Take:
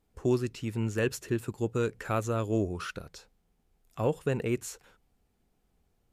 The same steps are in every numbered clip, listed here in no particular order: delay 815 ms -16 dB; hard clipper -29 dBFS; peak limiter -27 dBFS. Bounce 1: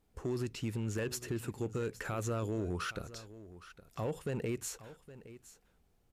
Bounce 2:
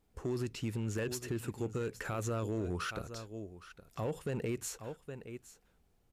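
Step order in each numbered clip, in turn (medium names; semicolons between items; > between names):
peak limiter > hard clipper > delay; delay > peak limiter > hard clipper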